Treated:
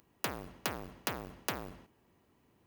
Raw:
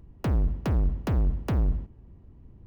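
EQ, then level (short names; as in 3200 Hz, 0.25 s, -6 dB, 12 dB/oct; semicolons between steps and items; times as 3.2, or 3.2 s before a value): differentiator; low shelf 80 Hz -9 dB; high shelf 3000 Hz -8 dB; +17.5 dB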